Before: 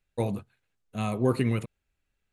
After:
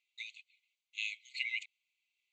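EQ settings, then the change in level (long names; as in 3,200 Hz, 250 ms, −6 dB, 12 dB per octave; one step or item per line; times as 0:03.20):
linear-phase brick-wall band-pass 2,000–8,100 Hz
high-frequency loss of the air 100 metres
notch filter 5,300 Hz, Q 7.4
+7.0 dB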